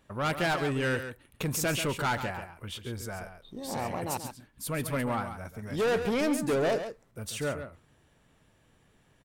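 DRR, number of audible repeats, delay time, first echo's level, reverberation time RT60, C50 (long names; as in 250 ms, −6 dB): no reverb audible, 1, 137 ms, −9.5 dB, no reverb audible, no reverb audible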